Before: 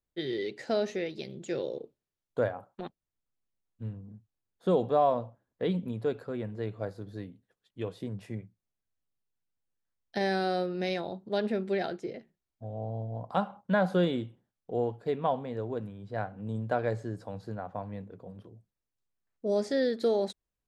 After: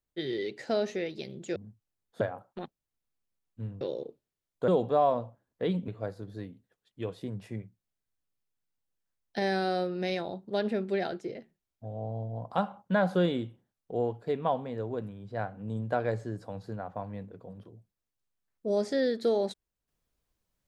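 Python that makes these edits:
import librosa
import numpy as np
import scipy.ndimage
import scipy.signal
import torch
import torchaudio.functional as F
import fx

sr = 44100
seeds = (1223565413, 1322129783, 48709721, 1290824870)

y = fx.edit(x, sr, fx.swap(start_s=1.56, length_s=0.87, other_s=4.03, other_length_s=0.65),
    fx.cut(start_s=5.88, length_s=0.79), tone=tone)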